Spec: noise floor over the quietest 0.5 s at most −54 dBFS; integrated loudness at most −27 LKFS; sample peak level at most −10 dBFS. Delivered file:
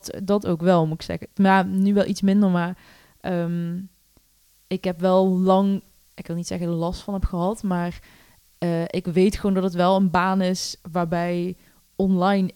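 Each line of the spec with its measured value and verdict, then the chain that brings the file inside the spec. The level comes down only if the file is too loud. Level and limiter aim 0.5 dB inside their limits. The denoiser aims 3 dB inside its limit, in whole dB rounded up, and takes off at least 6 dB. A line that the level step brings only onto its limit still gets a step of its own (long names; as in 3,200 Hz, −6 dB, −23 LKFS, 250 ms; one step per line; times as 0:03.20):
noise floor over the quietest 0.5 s −60 dBFS: in spec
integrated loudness −22.5 LKFS: out of spec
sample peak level −5.5 dBFS: out of spec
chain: level −5 dB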